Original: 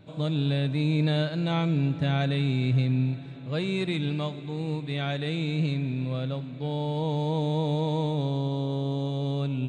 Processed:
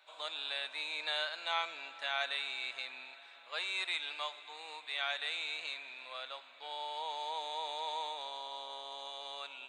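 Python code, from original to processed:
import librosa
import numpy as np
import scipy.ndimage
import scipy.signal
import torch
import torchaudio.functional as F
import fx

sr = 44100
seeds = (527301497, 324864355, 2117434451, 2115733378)

y = scipy.signal.sosfilt(scipy.signal.butter(4, 850.0, 'highpass', fs=sr, output='sos'), x)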